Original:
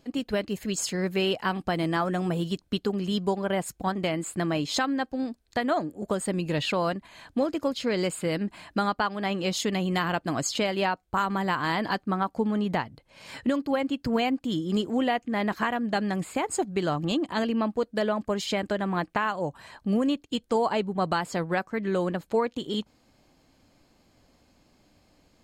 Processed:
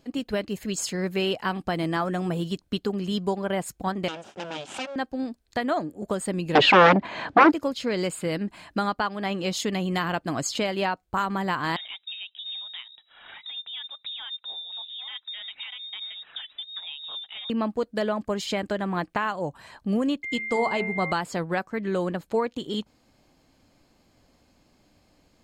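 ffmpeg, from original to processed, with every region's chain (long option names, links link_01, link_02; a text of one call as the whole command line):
ffmpeg -i in.wav -filter_complex "[0:a]asettb=1/sr,asplit=3[link_01][link_02][link_03];[link_01]atrim=end=4.084[link_04];[link_02]atrim=start=4.08:end=4.96,asetpts=PTS-STARTPTS,afade=type=in:duration=0.004:curve=qsin,afade=type=out:start_time=0.876:duration=0.004:curve=qsin,aeval=exprs='abs(val(0))':channel_layout=same,highpass=280,equalizer=frequency=460:width_type=q:width=4:gain=-7,equalizer=frequency=1100:width_type=q:width=4:gain=-8,equalizer=frequency=2000:width_type=q:width=4:gain=-8,equalizer=frequency=3000:width_type=q:width=4:gain=4,equalizer=frequency=4400:width_type=q:width=4:gain=-5,lowpass=frequency=7200:width=0.5412,lowpass=frequency=7200:width=1.3066[link_05];[link_03]atrim=start=4.956[link_06];[link_04][link_05]acrossfade=duration=0.004:curve1=hsin:curve2=qsin[link_07];[link_07][link_06]acrossfade=duration=0.004:curve1=qsin:curve2=hsin,asettb=1/sr,asplit=3[link_08][link_09][link_10];[link_08]atrim=end=6.554[link_11];[link_09]atrim=start=6.55:end=7.52,asetpts=PTS-STARTPTS,afade=type=in:duration=0.004:curve=qsin,afade=type=out:start_time=0.966:duration=0.004:curve=qsin,aemphasis=mode=reproduction:type=riaa,aeval=exprs='0.355*sin(PI/2*4.47*val(0)/0.355)':channel_layout=same,highpass=320,lowpass=5700[link_12];[link_10]atrim=start=7.516[link_13];[link_11][link_12]acrossfade=duration=0.004:curve1=hsin:curve2=qsin[link_14];[link_14][link_13]acrossfade=duration=0.004:curve1=qsin:curve2=hsin,asettb=1/sr,asplit=3[link_15][link_16][link_17];[link_15]atrim=end=11.764[link_18];[link_16]atrim=start=11.76:end=17.5,asetpts=PTS-STARTPTS,afade=type=in:duration=0.004:curve=qsin,afade=type=out:start_time=5.736:duration=0.004:curve=qsin,acompressor=threshold=-40dB:ratio=2.5:attack=3.2:release=140:knee=1:detection=peak,aphaser=in_gain=1:out_gain=1:delay=4.9:decay=0.32:speed=1.3:type=triangular,lowpass=frequency=3300:width_type=q:width=0.5098,lowpass=frequency=3300:width_type=q:width=0.6013,lowpass=frequency=3300:width_type=q:width=0.9,lowpass=frequency=3300:width_type=q:width=2.563,afreqshift=-3900[link_19];[link_17]atrim=start=17.496[link_20];[link_18][link_19]acrossfade=duration=0.004:curve1=hsin:curve2=qsin[link_21];[link_21][link_20]acrossfade=duration=0.004:curve1=qsin:curve2=hsin,asettb=1/sr,asplit=3[link_22][link_23][link_24];[link_22]atrim=end=20.234[link_25];[link_23]atrim=start=20.23:end=21.12,asetpts=PTS-STARTPTS,afade=type=in:duration=0.004:curve=qsin,afade=type=out:start_time=0.886:duration=0.004:curve=qsin,bandreject=frequency=109.8:width_type=h:width=4,bandreject=frequency=219.6:width_type=h:width=4,bandreject=frequency=329.4:width_type=h:width=4,bandreject=frequency=439.2:width_type=h:width=4,bandreject=frequency=549:width_type=h:width=4,bandreject=frequency=658.8:width_type=h:width=4,bandreject=frequency=768.6:width_type=h:width=4,bandreject=frequency=878.4:width_type=h:width=4,bandreject=frequency=988.2:width_type=h:width=4,bandreject=frequency=1098:width_type=h:width=4,bandreject=frequency=1207.8:width_type=h:width=4,bandreject=frequency=1317.6:width_type=h:width=4,bandreject=frequency=1427.4:width_type=h:width=4,bandreject=frequency=1537.2:width_type=h:width=4,bandreject=frequency=1647:width_type=h:width=4,bandreject=frequency=1756.8:width_type=h:width=4,bandreject=frequency=1866.6:width_type=h:width=4,bandreject=frequency=1976.4:width_type=h:width=4,bandreject=frequency=2086.2:width_type=h:width=4,bandreject=frequency=2196:width_type=h:width=4,bandreject=frequency=2305.8:width_type=h:width=4,bandreject=frequency=2415.6:width_type=h:width=4,bandreject=frequency=2525.4:width_type=h:width=4,bandreject=frequency=2635.2:width_type=h:width=4,bandreject=frequency=2745:width_type=h:width=4,aeval=exprs='val(0)+0.0316*sin(2*PI*2100*n/s)':channel_layout=same[link_26];[link_24]atrim=start=21.116[link_27];[link_25][link_26]acrossfade=duration=0.004:curve1=hsin:curve2=qsin[link_28];[link_28][link_27]acrossfade=duration=0.004:curve1=qsin:curve2=hsin" out.wav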